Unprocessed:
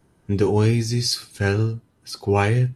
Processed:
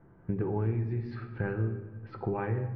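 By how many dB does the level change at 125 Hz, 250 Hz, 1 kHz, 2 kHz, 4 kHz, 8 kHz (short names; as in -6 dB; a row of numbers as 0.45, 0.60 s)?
-10.5 dB, -10.5 dB, -12.0 dB, -14.5 dB, under -35 dB, under -40 dB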